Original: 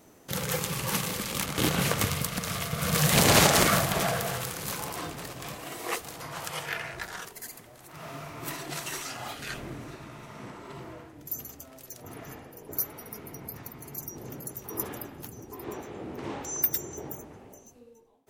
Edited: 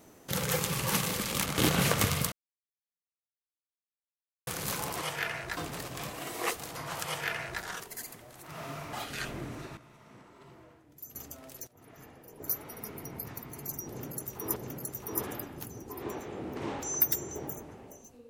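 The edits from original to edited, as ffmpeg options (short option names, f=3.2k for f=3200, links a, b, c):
-filter_complex "[0:a]asplit=10[a][b][c][d][e][f][g][h][i][j];[a]atrim=end=2.32,asetpts=PTS-STARTPTS,afade=t=out:st=2.316:d=0.004:c=hsin[k];[b]atrim=start=2.32:end=4.47,asetpts=PTS-STARTPTS,volume=0[l];[c]atrim=start=4.47:end=5.022,asetpts=PTS-STARTPTS,afade=t=in:d=0.004:c=hsin[m];[d]atrim=start=6.518:end=7.072[n];[e]atrim=start=5.018:end=8.382[o];[f]atrim=start=9.218:end=10.062[p];[g]atrim=start=10.058:end=11.442,asetpts=PTS-STARTPTS,volume=-11.5dB[q];[h]atrim=start=11.438:end=11.96,asetpts=PTS-STARTPTS,afade=t=out:st=0.518:d=0.004:c=hsin:silence=0.105925[r];[i]atrim=start=11.96:end=14.852,asetpts=PTS-STARTPTS,afade=t=in:d=1.18:silence=0.105925[s];[j]atrim=start=14.178[t];[k][l][m]concat=n=3:v=0:a=1[u];[u][n]acrossfade=d=0.004:c1=hsin:c2=hsin[v];[v][o]acrossfade=d=0.004:c1=hsin:c2=hsin[w];[w][p]acrossfade=d=0.004:c1=hsin:c2=hsin[x];[x][q]acrossfade=d=0.004:c1=hsin:c2=hsin[y];[r][s]concat=n=2:v=0:a=1[z];[y][z]acrossfade=d=0.004:c1=hsin:c2=hsin[aa];[aa][t]acrossfade=d=0.004:c1=hsin:c2=hsin"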